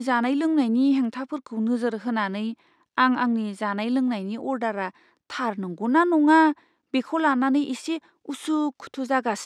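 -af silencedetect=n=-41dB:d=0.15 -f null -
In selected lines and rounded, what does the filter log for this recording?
silence_start: 2.54
silence_end: 2.97 | silence_duration: 0.44
silence_start: 4.90
silence_end: 5.30 | silence_duration: 0.40
silence_start: 6.53
silence_end: 6.94 | silence_duration: 0.41
silence_start: 7.99
silence_end: 8.26 | silence_duration: 0.27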